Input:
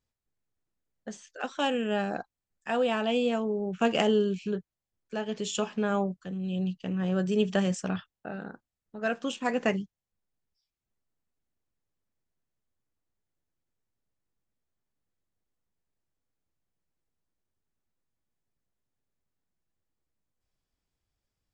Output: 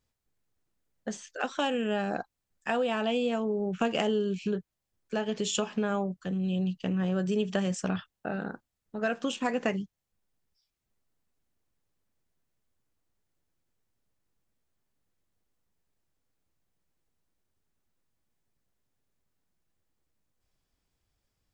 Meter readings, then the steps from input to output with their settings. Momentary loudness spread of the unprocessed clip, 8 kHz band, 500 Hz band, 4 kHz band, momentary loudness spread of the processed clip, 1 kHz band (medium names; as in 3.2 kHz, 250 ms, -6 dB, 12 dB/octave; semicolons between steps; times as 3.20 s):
15 LU, +2.0 dB, -1.5 dB, -0.5 dB, 11 LU, -1.0 dB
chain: compression 3:1, threshold -32 dBFS, peak gain reduction 9.5 dB; trim +5 dB